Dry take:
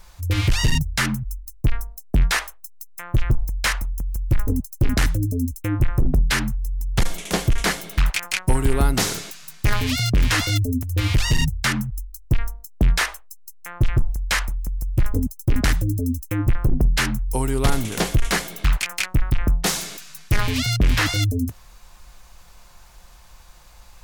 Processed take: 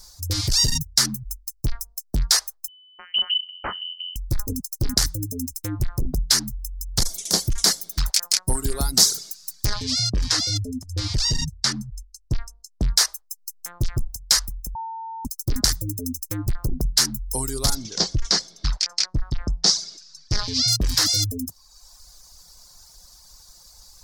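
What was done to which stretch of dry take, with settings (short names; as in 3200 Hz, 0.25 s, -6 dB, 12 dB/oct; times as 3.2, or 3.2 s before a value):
2.68–4.16 inverted band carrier 3000 Hz
9.66–12.92 air absorption 77 m
14.75–15.25 bleep 900 Hz -21.5 dBFS
17.75–20.68 Chebyshev low-pass 5500 Hz, order 3
whole clip: reverb removal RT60 0.92 s; resonant high shelf 3600 Hz +11 dB, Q 3; gain -5 dB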